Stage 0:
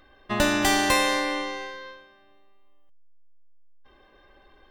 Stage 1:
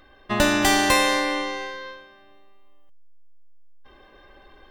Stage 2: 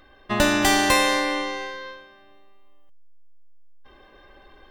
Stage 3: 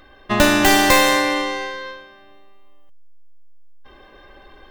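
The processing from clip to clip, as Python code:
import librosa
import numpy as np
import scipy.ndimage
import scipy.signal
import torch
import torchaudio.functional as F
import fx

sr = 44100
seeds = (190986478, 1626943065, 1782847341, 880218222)

y1 = fx.rider(x, sr, range_db=4, speed_s=2.0)
y1 = F.gain(torch.from_numpy(y1), 1.5).numpy()
y2 = y1
y3 = fx.tracing_dist(y2, sr, depth_ms=0.22)
y3 = F.gain(torch.from_numpy(y3), 5.0).numpy()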